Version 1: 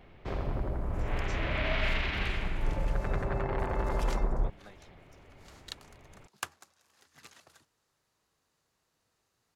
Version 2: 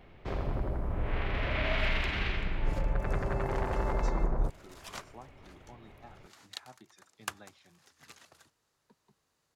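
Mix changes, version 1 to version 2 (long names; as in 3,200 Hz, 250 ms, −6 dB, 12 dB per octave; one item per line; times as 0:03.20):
speech: entry +2.75 s
second sound: entry +0.85 s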